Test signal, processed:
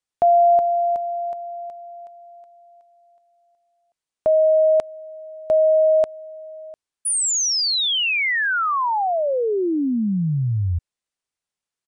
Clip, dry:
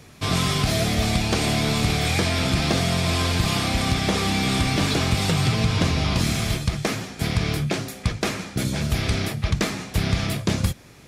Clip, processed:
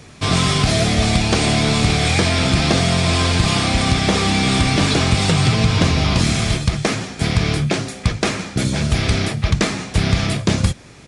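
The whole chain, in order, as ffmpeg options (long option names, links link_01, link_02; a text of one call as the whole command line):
ffmpeg -i in.wav -af "aresample=22050,aresample=44100,volume=5.5dB" out.wav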